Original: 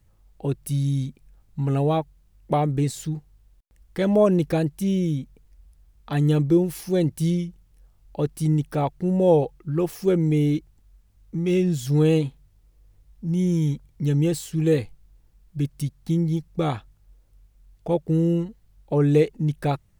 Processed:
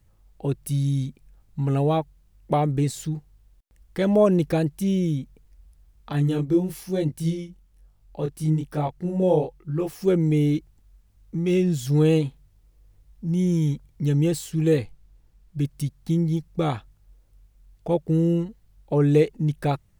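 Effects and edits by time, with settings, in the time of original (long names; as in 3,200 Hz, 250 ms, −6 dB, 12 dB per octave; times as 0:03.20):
0:06.12–0:10.01: chorus effect 1.1 Hz, delay 20 ms, depth 6.9 ms
0:14.77–0:15.59: high-shelf EQ 8,800 Hz −4.5 dB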